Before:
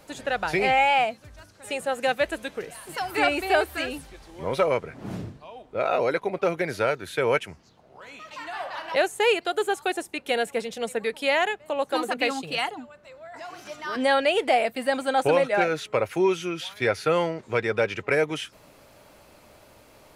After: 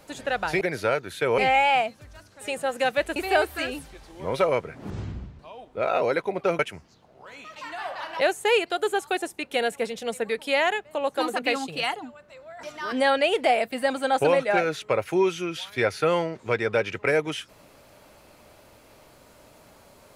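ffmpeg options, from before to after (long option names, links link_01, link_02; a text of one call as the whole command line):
ffmpeg -i in.wav -filter_complex "[0:a]asplit=8[link_01][link_02][link_03][link_04][link_05][link_06][link_07][link_08];[link_01]atrim=end=0.612[link_09];[link_02]atrim=start=6.568:end=7.342[link_10];[link_03]atrim=start=0.608:end=2.392[link_11];[link_04]atrim=start=3.348:end=5.094[link_12];[link_05]atrim=start=5.09:end=5.37,asetpts=PTS-STARTPTS,asetrate=25137,aresample=44100,atrim=end_sample=21663,asetpts=PTS-STARTPTS[link_13];[link_06]atrim=start=5.366:end=6.572[link_14];[link_07]atrim=start=7.338:end=13.382[link_15];[link_08]atrim=start=13.668[link_16];[link_09][link_10]acrossfade=duration=0.004:curve1=hsin:curve2=hsin[link_17];[link_17][link_11]acrossfade=duration=0.004:curve1=hsin:curve2=hsin[link_18];[link_18][link_12]acrossfade=duration=0.004:curve1=hsin:curve2=hsin[link_19];[link_19][link_13]acrossfade=duration=0.004:curve1=hsin:curve2=hsin[link_20];[link_20][link_14]acrossfade=duration=0.004:curve1=hsin:curve2=hsin[link_21];[link_21][link_15]acrossfade=duration=0.004:curve1=hsin:curve2=hsin[link_22];[link_22][link_16]acrossfade=duration=0.004:curve1=hsin:curve2=hsin" out.wav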